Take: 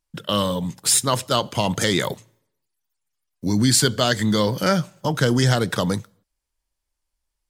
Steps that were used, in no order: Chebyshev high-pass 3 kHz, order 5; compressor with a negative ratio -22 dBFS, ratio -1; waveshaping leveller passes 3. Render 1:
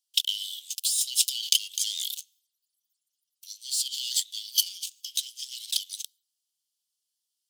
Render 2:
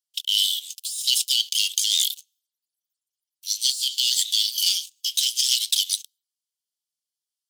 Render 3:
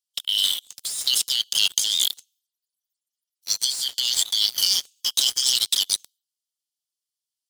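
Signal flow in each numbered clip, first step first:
waveshaping leveller > compressor with a negative ratio > Chebyshev high-pass; waveshaping leveller > Chebyshev high-pass > compressor with a negative ratio; Chebyshev high-pass > waveshaping leveller > compressor with a negative ratio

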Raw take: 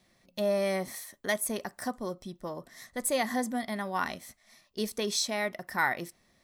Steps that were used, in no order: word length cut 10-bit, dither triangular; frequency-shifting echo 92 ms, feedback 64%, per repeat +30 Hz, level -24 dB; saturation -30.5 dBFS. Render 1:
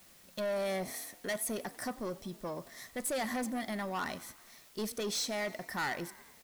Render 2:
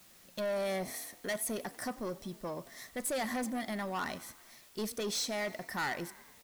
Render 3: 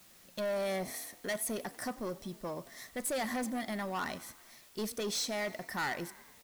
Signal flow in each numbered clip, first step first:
word length cut > frequency-shifting echo > saturation; frequency-shifting echo > word length cut > saturation; frequency-shifting echo > saturation > word length cut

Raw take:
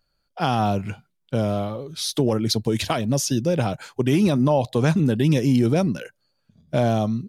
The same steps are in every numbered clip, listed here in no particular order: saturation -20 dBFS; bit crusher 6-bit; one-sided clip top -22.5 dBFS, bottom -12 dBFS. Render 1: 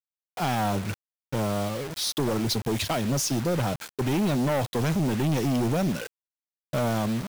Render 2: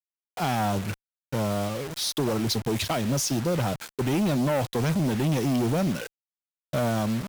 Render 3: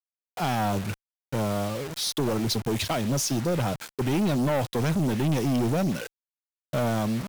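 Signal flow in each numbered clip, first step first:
one-sided clip > saturation > bit crusher; saturation > bit crusher > one-sided clip; bit crusher > one-sided clip > saturation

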